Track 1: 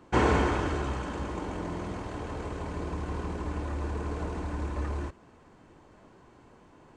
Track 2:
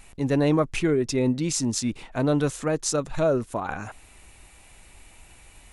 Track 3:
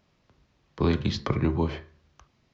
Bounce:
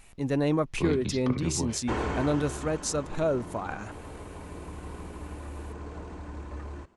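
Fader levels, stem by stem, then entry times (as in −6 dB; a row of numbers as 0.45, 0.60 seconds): −6.5, −4.5, −7.0 decibels; 1.75, 0.00, 0.00 seconds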